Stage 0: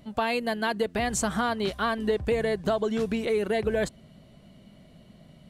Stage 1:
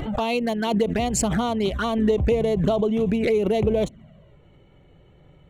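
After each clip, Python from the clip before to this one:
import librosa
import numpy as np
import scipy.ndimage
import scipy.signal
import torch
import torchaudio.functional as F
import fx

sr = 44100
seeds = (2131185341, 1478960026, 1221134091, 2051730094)

y = fx.wiener(x, sr, points=9)
y = fx.env_flanger(y, sr, rest_ms=2.6, full_db=-23.5)
y = fx.pre_swell(y, sr, db_per_s=40.0)
y = F.gain(torch.from_numpy(y), 5.5).numpy()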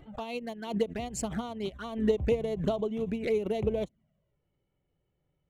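y = fx.upward_expand(x, sr, threshold_db=-31.0, expansion=2.5)
y = F.gain(torch.from_numpy(y), -3.5).numpy()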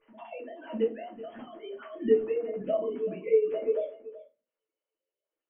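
y = fx.sine_speech(x, sr)
y = y + 10.0 ** (-16.5 / 20.0) * np.pad(y, (int(378 * sr / 1000.0), 0))[:len(y)]
y = fx.room_shoebox(y, sr, seeds[0], volume_m3=120.0, walls='furnished', distance_m=2.5)
y = F.gain(torch.from_numpy(y), -6.5).numpy()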